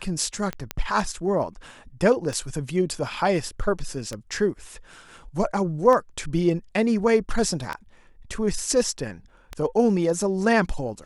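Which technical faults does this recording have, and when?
tick 33 1/3 rpm -15 dBFS
0.71 s: pop -11 dBFS

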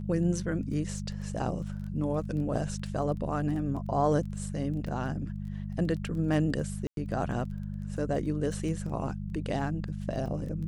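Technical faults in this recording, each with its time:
crackle 12 per s -39 dBFS
hum 50 Hz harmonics 4 -36 dBFS
6.87–6.97 s: dropout 102 ms

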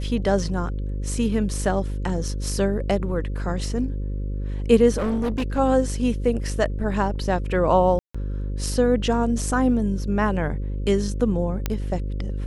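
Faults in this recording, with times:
buzz 50 Hz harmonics 11 -27 dBFS
4.97–5.59 s: clipped -20 dBFS
7.99–8.14 s: dropout 155 ms
11.66 s: pop -9 dBFS

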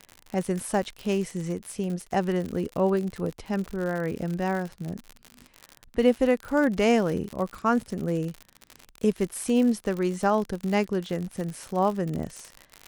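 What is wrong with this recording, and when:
crackle 72 per s -30 dBFS

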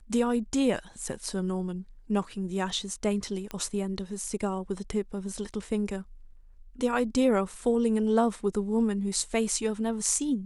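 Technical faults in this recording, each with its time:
3.51 s: pop -19 dBFS

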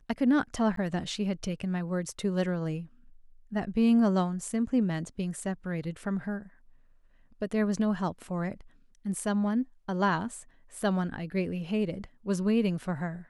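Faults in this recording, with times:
0.76–0.77 s: dropout 13 ms

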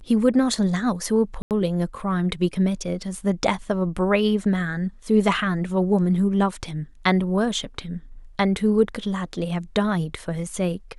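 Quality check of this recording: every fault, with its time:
1.42–1.51 s: dropout 88 ms

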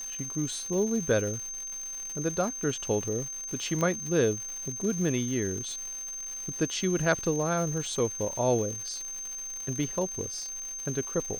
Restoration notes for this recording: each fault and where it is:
crackle 320 per s -36 dBFS
whine 6.3 kHz -35 dBFS
3.81 s: pop -17 dBFS

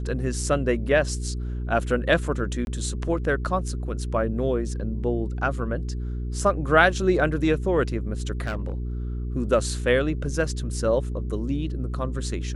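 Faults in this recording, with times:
hum 60 Hz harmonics 7 -29 dBFS
2.65–2.67 s: dropout 21 ms
8.45–8.72 s: clipped -23.5 dBFS

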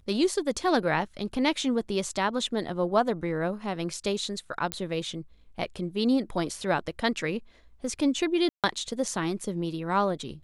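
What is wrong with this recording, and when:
4.72 s: pop -11 dBFS
8.49–8.64 s: dropout 147 ms

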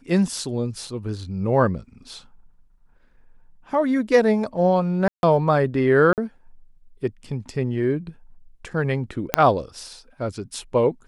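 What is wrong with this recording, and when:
0.87 s: dropout 3 ms
5.08–5.23 s: dropout 151 ms
6.13–6.18 s: dropout 48 ms
9.34 s: pop -1 dBFS

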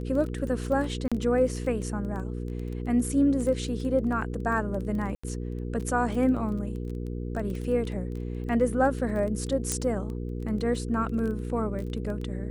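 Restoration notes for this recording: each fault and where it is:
crackle 15 per s -33 dBFS
hum 60 Hz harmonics 8 -33 dBFS
1.08–1.12 s: dropout 36 ms
5.15–5.24 s: dropout 85 ms
9.72 s: pop -12 dBFS

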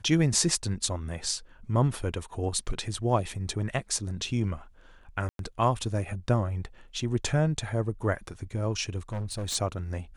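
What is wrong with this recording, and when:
5.29–5.39 s: dropout 102 ms
9.09–9.56 s: clipped -29 dBFS

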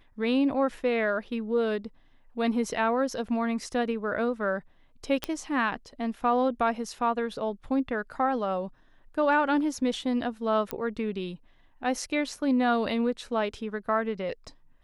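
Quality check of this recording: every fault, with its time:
5.24 s: pop -13 dBFS
10.71 s: pop -14 dBFS

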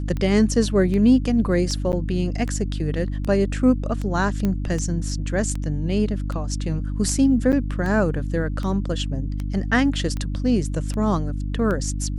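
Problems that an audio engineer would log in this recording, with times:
hum 50 Hz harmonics 6 -26 dBFS
tick 78 rpm -17 dBFS
1.92–1.93 s: dropout 9.4 ms
4.45 s: pop -12 dBFS
7.52–7.53 s: dropout 8.4 ms

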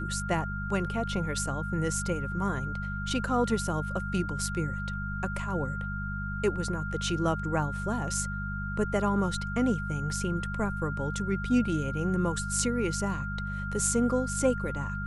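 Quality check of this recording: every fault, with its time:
hum 50 Hz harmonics 4 -35 dBFS
whine 1.4 kHz -36 dBFS

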